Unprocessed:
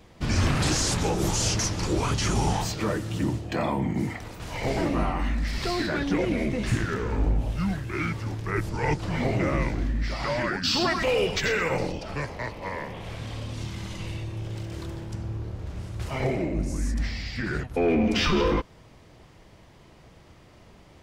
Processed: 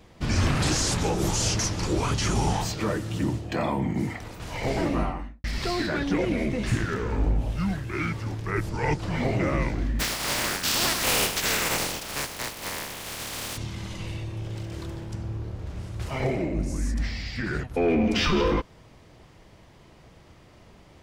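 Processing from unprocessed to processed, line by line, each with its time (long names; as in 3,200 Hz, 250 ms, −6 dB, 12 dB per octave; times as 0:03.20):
0:04.94–0:05.44: fade out and dull
0:09.99–0:13.56: compressing power law on the bin magnitudes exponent 0.27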